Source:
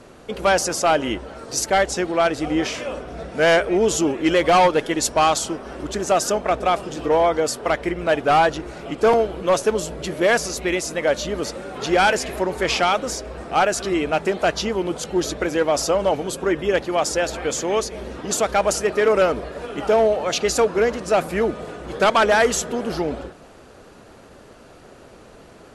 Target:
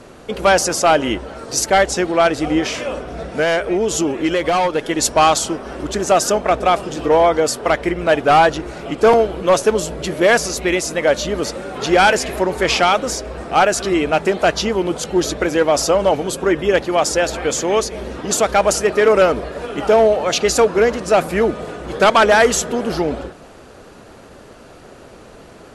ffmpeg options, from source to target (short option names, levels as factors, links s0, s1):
-filter_complex "[0:a]asettb=1/sr,asplit=3[s0][s1][s2];[s0]atrim=end=2.584[s3];[s1]atrim=start=2.58:end=4.99,asetpts=PTS-STARTPTS,afade=t=in:d=0.004:c=qsin,afade=t=out:st=2.406:d=0.004:c=qsin,acompressor=threshold=0.112:ratio=6[s4];[s2]atrim=start=4.986[s5];[s3][s4]acrossfade=d=0.004:c1=hsin:c2=qsin[s6];[s6][s5]acrossfade=d=0.004:c1=qsin:c2=hsin,volume=1.68"